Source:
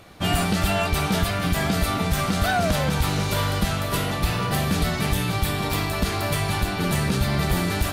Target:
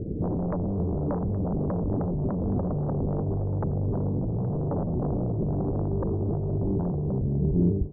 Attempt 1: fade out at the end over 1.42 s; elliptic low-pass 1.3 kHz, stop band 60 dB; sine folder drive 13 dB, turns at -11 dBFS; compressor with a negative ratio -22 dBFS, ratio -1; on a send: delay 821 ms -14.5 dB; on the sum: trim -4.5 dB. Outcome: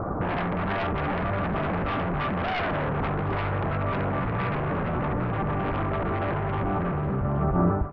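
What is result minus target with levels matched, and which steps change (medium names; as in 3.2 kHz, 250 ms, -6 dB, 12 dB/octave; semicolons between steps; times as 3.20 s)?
1 kHz band +11.5 dB
change: elliptic low-pass 440 Hz, stop band 60 dB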